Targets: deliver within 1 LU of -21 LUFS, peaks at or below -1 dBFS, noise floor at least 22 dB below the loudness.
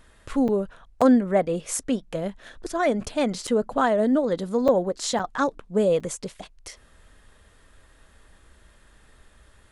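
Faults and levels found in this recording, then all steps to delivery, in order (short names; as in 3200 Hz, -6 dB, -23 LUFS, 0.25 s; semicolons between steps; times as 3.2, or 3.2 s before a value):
dropouts 6; longest dropout 5.7 ms; loudness -24.0 LUFS; peak -6.0 dBFS; loudness target -21.0 LUFS
-> interpolate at 0.48/1.01/3.47/4.68/5.19/6, 5.7 ms; gain +3 dB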